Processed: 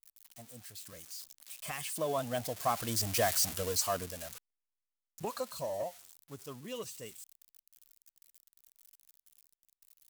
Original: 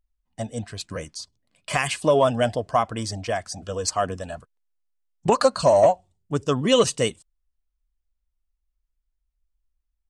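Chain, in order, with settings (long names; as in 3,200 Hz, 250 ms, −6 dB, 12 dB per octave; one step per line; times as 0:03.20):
spike at every zero crossing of −18 dBFS
source passing by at 0:03.30, 11 m/s, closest 3.7 metres
level −4 dB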